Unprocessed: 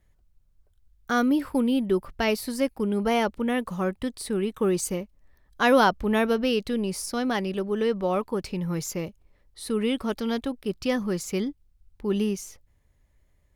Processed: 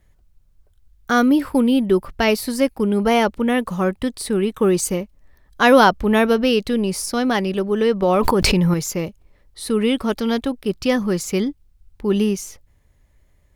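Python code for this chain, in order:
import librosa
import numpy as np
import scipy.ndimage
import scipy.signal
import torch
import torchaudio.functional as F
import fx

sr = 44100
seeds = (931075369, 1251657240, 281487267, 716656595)

y = fx.env_flatten(x, sr, amount_pct=100, at=(8.02, 8.74))
y = y * 10.0 ** (7.0 / 20.0)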